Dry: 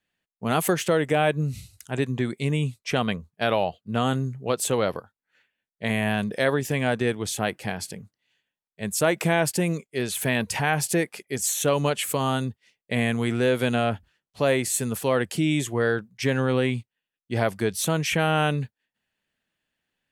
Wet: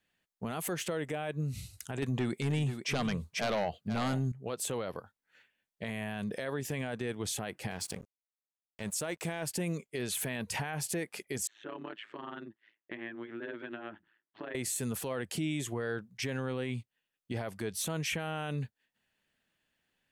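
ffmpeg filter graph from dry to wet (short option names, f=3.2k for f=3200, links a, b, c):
-filter_complex "[0:a]asettb=1/sr,asplit=3[a][b][c];[a]atrim=end=2.024[d];[b]atrim=start=2.02:end=4.32,asetpts=PTS-STARTPTS,afade=t=in:d=0.004:c=qsin,afade=t=out:st=2.296:d=0.004:c=qsin,aeval=exprs='0.422*sin(PI/2*2.82*val(0)/0.422)':c=same,aecho=1:1:485:0.224,atrim=end_sample=101430[e];[c]atrim=start=4.316[f];[d][e]acrossfade=d=0.004:c1=hsin:c2=qsin[g];[g][f]acrossfade=d=0.004:c1=qsin:c2=hsin,asettb=1/sr,asplit=3[h][i][j];[h]atrim=end=7.714[k];[i]atrim=start=7.71:end=9.46,asetpts=PTS-STARTPTS,afade=t=in:d=0.004:c=qsin,afade=t=out:st=1.746:d=0.004:c=qsin,lowpass=9.4k,highshelf=f=5.5k:g=8.5,aeval=exprs='sgn(val(0))*max(abs(val(0))-0.00668,0)':c=same[l];[j]atrim=start=9.456[m];[k][l]acrossfade=d=0.004:c1=hsin:c2=qsin[n];[n][m]acrossfade=d=0.004:c1=qsin:c2=hsin,asettb=1/sr,asplit=3[o][p][q];[o]atrim=end=11.474[r];[p]atrim=start=11.47:end=14.55,asetpts=PTS-STARTPTS,afade=t=in:d=0.004:c=qsin,afade=t=out:st=3.076:d=0.004:c=qsin,acompressor=threshold=-37dB:ratio=3:attack=3.2:release=140:knee=1:detection=peak,tremolo=f=110:d=0.889,highpass=300,equalizer=f=330:t=q:w=4:g=9,equalizer=f=490:t=q:w=4:g=-9,equalizer=f=730:t=q:w=4:g=-6,equalizer=f=1.7k:t=q:w=4:g=6,equalizer=f=2.4k:t=q:w=4:g=-5,lowpass=f=2.9k:w=0.5412,lowpass=f=2.9k:w=1.3066[s];[q]atrim=start=14.546[t];[r][s]acrossfade=d=0.004:c1=hsin:c2=qsin[u];[u][t]acrossfade=d=0.004:c1=qsin:c2=hsin,acompressor=threshold=-32dB:ratio=4,alimiter=level_in=2dB:limit=-24dB:level=0:latency=1:release=17,volume=-2dB,volume=1dB"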